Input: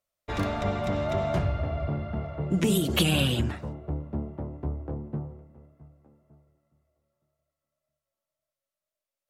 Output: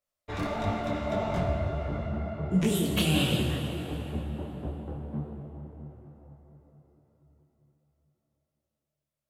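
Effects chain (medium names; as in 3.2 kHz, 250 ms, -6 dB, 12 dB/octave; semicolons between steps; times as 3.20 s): plate-style reverb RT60 4.5 s, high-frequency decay 0.6×, DRR 2 dB; detune thickener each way 52 cents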